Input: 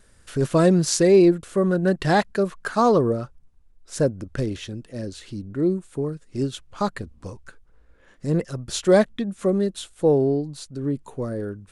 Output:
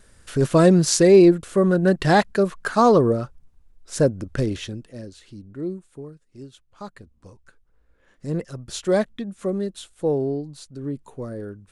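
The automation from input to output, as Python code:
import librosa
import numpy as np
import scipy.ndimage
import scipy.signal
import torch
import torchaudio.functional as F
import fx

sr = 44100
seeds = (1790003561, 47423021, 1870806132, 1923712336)

y = fx.gain(x, sr, db=fx.line((4.65, 2.5), (5.11, -7.5), (5.69, -7.5), (6.44, -15.5), (8.26, -4.0)))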